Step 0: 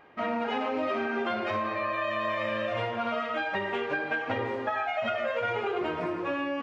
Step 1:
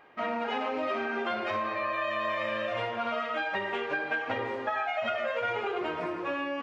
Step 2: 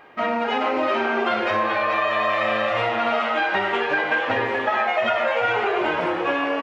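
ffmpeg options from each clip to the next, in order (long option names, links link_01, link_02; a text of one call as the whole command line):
ffmpeg -i in.wav -af "lowshelf=frequency=300:gain=-7" out.wav
ffmpeg -i in.wav -filter_complex "[0:a]asplit=8[link_01][link_02][link_03][link_04][link_05][link_06][link_07][link_08];[link_02]adelay=431,afreqshift=110,volume=-7dB[link_09];[link_03]adelay=862,afreqshift=220,volume=-12.2dB[link_10];[link_04]adelay=1293,afreqshift=330,volume=-17.4dB[link_11];[link_05]adelay=1724,afreqshift=440,volume=-22.6dB[link_12];[link_06]adelay=2155,afreqshift=550,volume=-27.8dB[link_13];[link_07]adelay=2586,afreqshift=660,volume=-33dB[link_14];[link_08]adelay=3017,afreqshift=770,volume=-38.2dB[link_15];[link_01][link_09][link_10][link_11][link_12][link_13][link_14][link_15]amix=inputs=8:normalize=0,volume=8.5dB" out.wav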